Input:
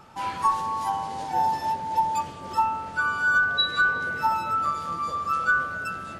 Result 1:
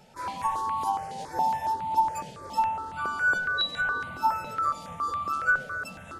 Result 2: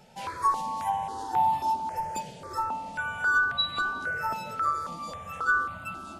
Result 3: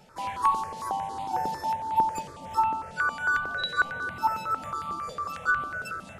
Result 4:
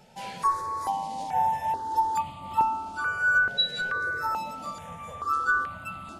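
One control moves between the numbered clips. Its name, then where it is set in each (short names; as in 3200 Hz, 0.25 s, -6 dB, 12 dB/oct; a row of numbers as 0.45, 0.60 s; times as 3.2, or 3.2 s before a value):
step phaser, rate: 7.2, 3.7, 11, 2.3 Hz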